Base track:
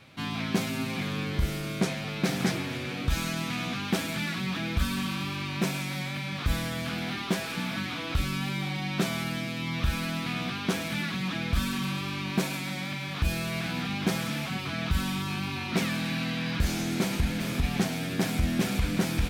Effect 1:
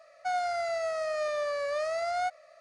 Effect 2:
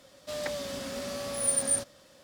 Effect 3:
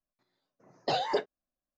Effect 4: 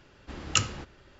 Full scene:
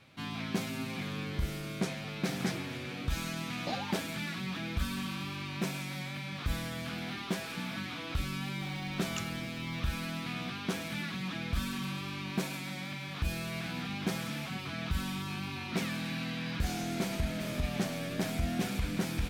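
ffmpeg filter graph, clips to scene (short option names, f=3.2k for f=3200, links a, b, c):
-filter_complex "[0:a]volume=-6dB[a];[3:a]aphaser=in_gain=1:out_gain=1:delay=4.4:decay=0.62:speed=1.8:type=triangular[b];[4:a]aeval=exprs='val(0)+0.5*0.0251*sgn(val(0))':c=same[c];[1:a]asoftclip=type=hard:threshold=-32dB[d];[b]atrim=end=1.77,asetpts=PTS-STARTPTS,volume=-11dB,afade=t=in:d=0.004:c=hsin,afade=t=out:st=1.766:d=0.004:c=hsin,adelay=2790[e];[c]atrim=end=1.19,asetpts=PTS-STARTPTS,volume=-17.5dB,afade=t=in:d=0.004:c=hsin,afade=t=out:st=1.186:d=0.004:c=hsin,adelay=8610[f];[d]atrim=end=2.6,asetpts=PTS-STARTPTS,volume=-10.5dB,afade=t=in:d=0.004:c=hsin,afade=t=out:st=2.596:d=0.004:c=hsin,adelay=16390[g];[a][e][f][g]amix=inputs=4:normalize=0"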